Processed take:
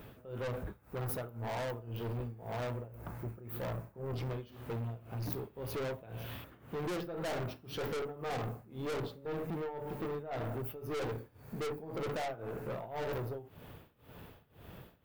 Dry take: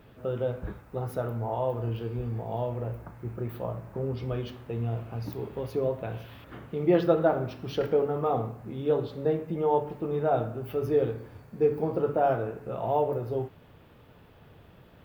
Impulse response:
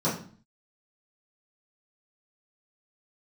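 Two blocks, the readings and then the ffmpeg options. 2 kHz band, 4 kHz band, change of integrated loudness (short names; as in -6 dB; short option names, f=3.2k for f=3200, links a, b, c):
-1.5 dB, -0.5 dB, -10.5 dB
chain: -af "tremolo=f=1.9:d=0.93,aeval=exprs='(tanh(89.1*val(0)+0.25)-tanh(0.25))/89.1':c=same,highshelf=f=9k:g=11.5,volume=4dB"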